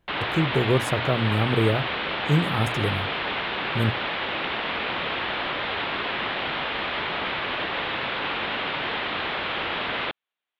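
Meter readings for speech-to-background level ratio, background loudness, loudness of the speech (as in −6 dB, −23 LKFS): 1.5 dB, −27.0 LKFS, −25.5 LKFS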